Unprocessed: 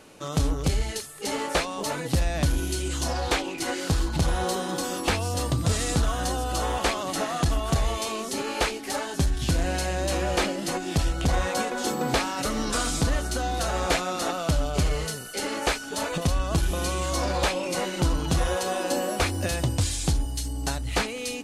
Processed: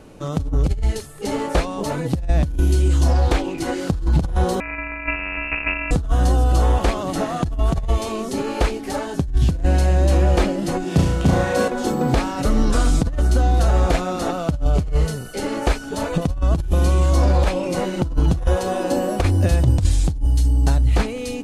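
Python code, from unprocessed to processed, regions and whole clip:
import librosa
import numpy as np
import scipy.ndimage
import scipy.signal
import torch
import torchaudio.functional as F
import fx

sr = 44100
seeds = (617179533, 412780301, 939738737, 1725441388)

y = fx.chain(x, sr, fx.sample_sort(block=128),
    fx.freq_invert(carrier_hz=2700), at=(4.6, 5.91))
y = fx.chain(y, sr, fx.highpass(hz=130.0, slope=12),
    fx.room_flutter(wall_m=5.9, rt60_s=0.63), at=(10.84, 11.68))
y = fx.low_shelf(y, sr, hz=110.0, db=11.5)
y = fx.over_compress(y, sr, threshold_db=-19.0, ratio=-0.5)
y = fx.tilt_shelf(y, sr, db=5.0, hz=1100.0)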